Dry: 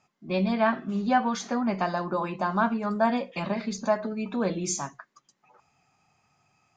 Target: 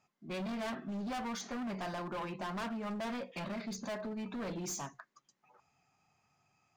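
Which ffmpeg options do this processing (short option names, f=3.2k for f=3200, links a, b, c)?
-af "volume=30dB,asoftclip=hard,volume=-30dB,volume=-6.5dB"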